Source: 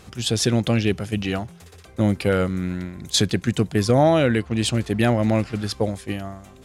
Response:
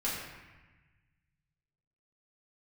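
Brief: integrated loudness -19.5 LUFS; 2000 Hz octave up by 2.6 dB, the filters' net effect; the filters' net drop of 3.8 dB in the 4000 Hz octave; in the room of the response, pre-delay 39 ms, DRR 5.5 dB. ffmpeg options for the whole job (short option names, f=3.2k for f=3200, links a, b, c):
-filter_complex "[0:a]equalizer=f=2k:t=o:g=5,equalizer=f=4k:t=o:g=-6.5,asplit=2[a][b];[1:a]atrim=start_sample=2205,adelay=39[c];[b][c]afir=irnorm=-1:irlink=0,volume=-11.5dB[d];[a][d]amix=inputs=2:normalize=0,volume=1.5dB"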